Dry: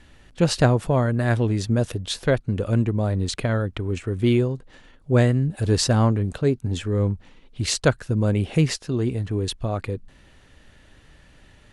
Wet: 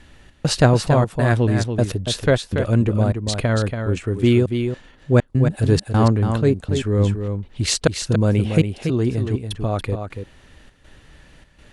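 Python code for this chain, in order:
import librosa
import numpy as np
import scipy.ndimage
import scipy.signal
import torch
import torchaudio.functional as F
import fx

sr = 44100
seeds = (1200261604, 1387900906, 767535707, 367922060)

p1 = fx.step_gate(x, sr, bpm=101, pattern='xx.xxxx.xxx.xx', floor_db=-60.0, edge_ms=4.5)
p2 = p1 + fx.echo_single(p1, sr, ms=283, db=-7.0, dry=0)
y = p2 * 10.0 ** (3.5 / 20.0)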